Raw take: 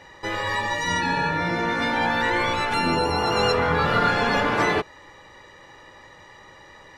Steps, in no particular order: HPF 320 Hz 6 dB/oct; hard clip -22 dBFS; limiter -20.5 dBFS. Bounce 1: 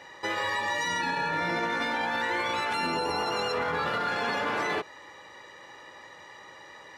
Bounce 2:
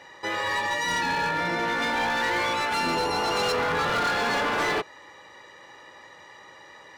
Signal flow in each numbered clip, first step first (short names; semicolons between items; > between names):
HPF > limiter > hard clip; HPF > hard clip > limiter